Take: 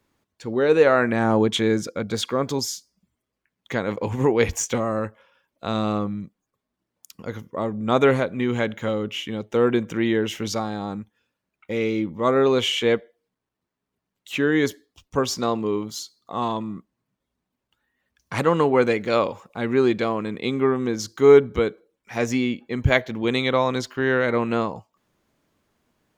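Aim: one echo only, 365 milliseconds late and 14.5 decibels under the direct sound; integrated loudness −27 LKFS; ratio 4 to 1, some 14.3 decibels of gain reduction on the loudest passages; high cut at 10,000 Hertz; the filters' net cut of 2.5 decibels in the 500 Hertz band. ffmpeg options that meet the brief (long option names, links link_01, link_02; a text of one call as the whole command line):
ffmpeg -i in.wav -af "lowpass=10000,equalizer=frequency=500:width_type=o:gain=-3,acompressor=threshold=-28dB:ratio=4,aecho=1:1:365:0.188,volume=5dB" out.wav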